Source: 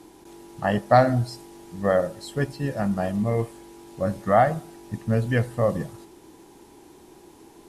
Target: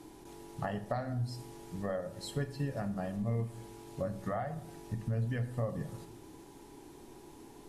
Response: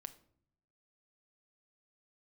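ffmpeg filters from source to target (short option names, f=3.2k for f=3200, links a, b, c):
-filter_complex "[0:a]lowshelf=f=100:g=7,acompressor=threshold=-28dB:ratio=16[a];[1:a]atrim=start_sample=2205,asetrate=36603,aresample=44100[b];[a][b]afir=irnorm=-1:irlink=0"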